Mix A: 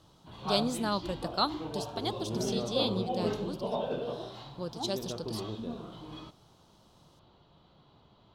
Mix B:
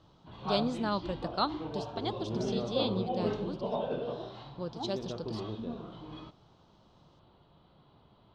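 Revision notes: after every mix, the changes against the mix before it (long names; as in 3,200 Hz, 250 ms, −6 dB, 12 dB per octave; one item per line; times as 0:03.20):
master: add high-frequency loss of the air 150 metres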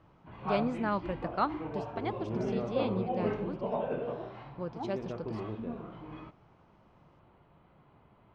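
master: add high shelf with overshoot 2,900 Hz −8.5 dB, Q 3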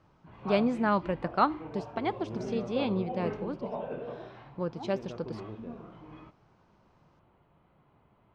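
speech +5.0 dB
background −3.5 dB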